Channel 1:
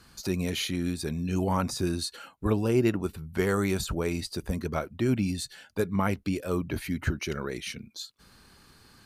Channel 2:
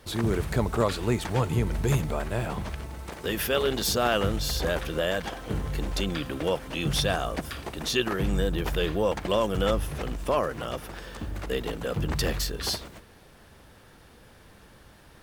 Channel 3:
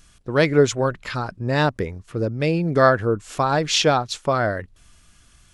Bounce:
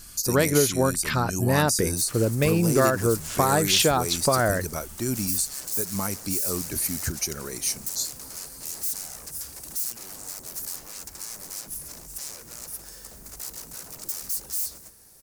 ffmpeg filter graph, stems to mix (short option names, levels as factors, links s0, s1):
-filter_complex "[0:a]volume=0.708[s0];[1:a]alimiter=limit=0.158:level=0:latency=1:release=397,aeval=exprs='0.02*(abs(mod(val(0)/0.02+3,4)-2)-1)':c=same,adelay=1900,volume=0.335[s1];[2:a]acompressor=threshold=0.1:ratio=6,volume=1.33[s2];[s0][s1]amix=inputs=2:normalize=0,aexciter=amount=10.6:drive=5:freq=4900,alimiter=limit=0.211:level=0:latency=1:release=151,volume=1[s3];[s2][s3]amix=inputs=2:normalize=0"